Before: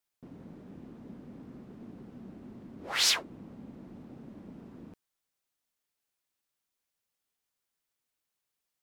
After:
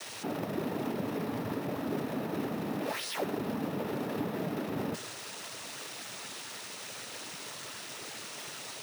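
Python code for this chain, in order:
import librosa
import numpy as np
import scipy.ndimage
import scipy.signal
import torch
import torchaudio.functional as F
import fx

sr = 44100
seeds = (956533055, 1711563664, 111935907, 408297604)

y = np.sign(x) * np.sqrt(np.mean(np.square(x)))
y = fx.noise_vocoder(y, sr, seeds[0], bands=12)
y = fx.dynamic_eq(y, sr, hz=480.0, q=0.92, threshold_db=-57.0, ratio=4.0, max_db=7)
y = np.repeat(scipy.signal.resample_poly(y, 1, 3), 3)[:len(y)]
y = y * librosa.db_to_amplitude(4.5)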